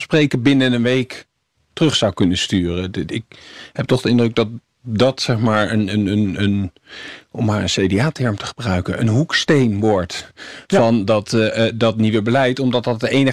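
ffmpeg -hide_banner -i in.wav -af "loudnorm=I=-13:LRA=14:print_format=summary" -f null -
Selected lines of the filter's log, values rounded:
Input Integrated:    -17.2 LUFS
Input True Peak:      -3.6 dBTP
Input LRA:             3.1 LU
Input Threshold:     -27.7 LUFS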